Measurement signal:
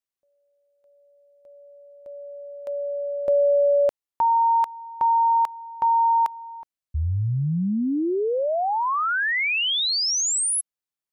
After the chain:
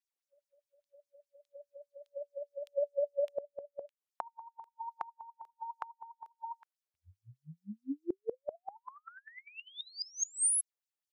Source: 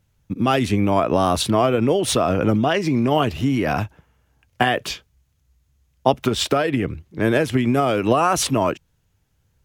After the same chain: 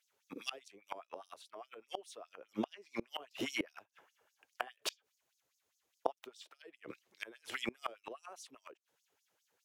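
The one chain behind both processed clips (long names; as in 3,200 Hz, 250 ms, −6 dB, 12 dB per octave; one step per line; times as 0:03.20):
auto-filter high-pass sine 4.9 Hz 390–6,100 Hz
gate with flip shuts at −16 dBFS, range −29 dB
level −6.5 dB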